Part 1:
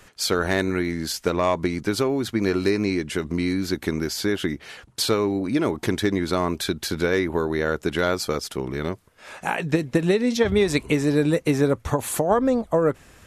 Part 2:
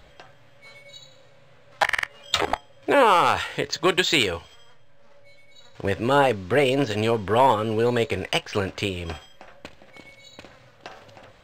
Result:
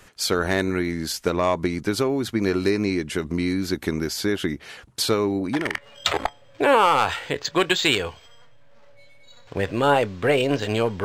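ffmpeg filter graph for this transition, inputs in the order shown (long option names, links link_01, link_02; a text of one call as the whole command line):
ffmpeg -i cue0.wav -i cue1.wav -filter_complex "[0:a]apad=whole_dur=11.04,atrim=end=11.04,atrim=end=5.83,asetpts=PTS-STARTPTS[link_01];[1:a]atrim=start=1.73:end=7.32,asetpts=PTS-STARTPTS[link_02];[link_01][link_02]acrossfade=duration=0.38:curve1=tri:curve2=tri" out.wav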